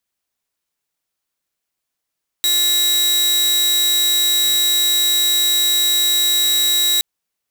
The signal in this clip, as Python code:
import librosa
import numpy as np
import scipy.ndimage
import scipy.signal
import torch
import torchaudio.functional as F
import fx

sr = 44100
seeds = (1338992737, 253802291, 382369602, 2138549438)

y = 10.0 ** (-11.0 / 20.0) * (2.0 * np.mod(3850.0 * (np.arange(round(4.57 * sr)) / sr), 1.0) - 1.0)